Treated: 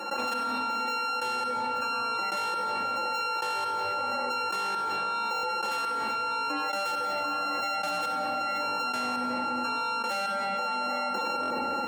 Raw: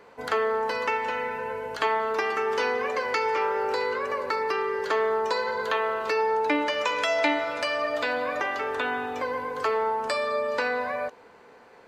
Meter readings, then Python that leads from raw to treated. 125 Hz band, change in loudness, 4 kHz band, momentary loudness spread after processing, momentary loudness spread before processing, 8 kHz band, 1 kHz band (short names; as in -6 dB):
n/a, -2.5 dB, +1.0 dB, 0 LU, 5 LU, +2.5 dB, 0.0 dB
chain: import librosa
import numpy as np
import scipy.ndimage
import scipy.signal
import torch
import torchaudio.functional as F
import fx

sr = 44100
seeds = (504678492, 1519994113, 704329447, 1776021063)

y = np.r_[np.sort(x[:len(x) // 32 * 32].reshape(-1, 32), axis=1).ravel(), x[len(x) // 32 * 32:]]
y = fx.peak_eq(y, sr, hz=830.0, db=8.5, octaves=0.29)
y = fx.spec_gate(y, sr, threshold_db=-20, keep='strong')
y = fx.rider(y, sr, range_db=3, speed_s=0.5)
y = fx.step_gate(y, sr, bpm=136, pattern='.xx.......', floor_db=-24.0, edge_ms=4.5)
y = y + 0.94 * np.pad(y, (int(3.6 * sr / 1000.0), 0))[:len(y)]
y = 10.0 ** (-24.0 / 20.0) * np.tanh(y / 10.0 ** (-24.0 / 20.0))
y = scipy.signal.sosfilt(scipy.signal.butter(2, 100.0, 'highpass', fs=sr, output='sos'), y)
y = fx.room_shoebox(y, sr, seeds[0], volume_m3=1800.0, walls='mixed', distance_m=0.94)
y = fx.buffer_glitch(y, sr, at_s=(5.34, 11.41), block=1024, repeats=3)
y = fx.env_flatten(y, sr, amount_pct=100)
y = y * 10.0 ** (-6.0 / 20.0)